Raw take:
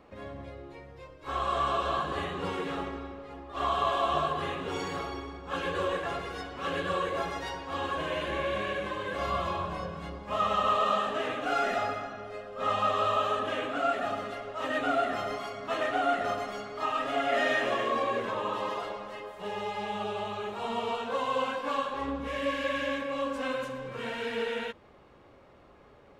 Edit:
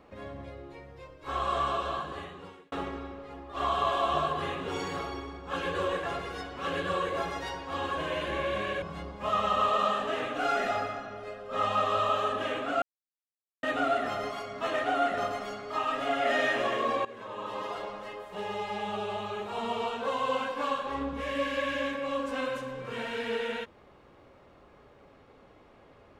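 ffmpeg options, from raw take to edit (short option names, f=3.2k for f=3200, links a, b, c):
-filter_complex "[0:a]asplit=6[a][b][c][d][e][f];[a]atrim=end=2.72,asetpts=PTS-STARTPTS,afade=t=out:st=1.55:d=1.17[g];[b]atrim=start=2.72:end=8.822,asetpts=PTS-STARTPTS,afade=t=in:d=0.004:c=hsin[h];[c]atrim=start=9.888:end=13.89,asetpts=PTS-STARTPTS,afade=t=out:st=3.998:d=0.004:c=hsin[i];[d]atrim=start=13.89:end=14.7,asetpts=PTS-STARTPTS,volume=0[j];[e]atrim=start=14.7:end=18.12,asetpts=PTS-STARTPTS,afade=t=in:d=0.004:c=hsin,afade=t=out:st=3.416:d=0.004:c=hsin:silence=0.141254[k];[f]atrim=start=18.12,asetpts=PTS-STARTPTS,afade=t=in:d=0.83:silence=0.141254[l];[g][h]concat=n=2:v=0:a=1[m];[i][j][k][l]concat=n=4:v=0:a=1[n];[m][n]acrossfade=d=0.004:c1=hsin:c2=hsin"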